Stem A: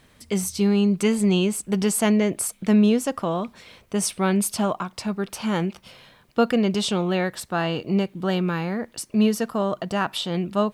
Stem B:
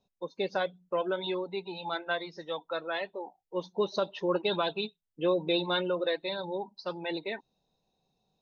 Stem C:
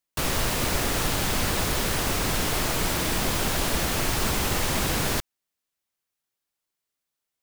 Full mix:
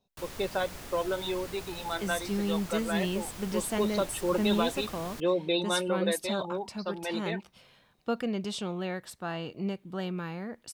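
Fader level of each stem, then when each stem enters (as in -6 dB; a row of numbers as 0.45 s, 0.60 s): -11.0 dB, 0.0 dB, -18.5 dB; 1.70 s, 0.00 s, 0.00 s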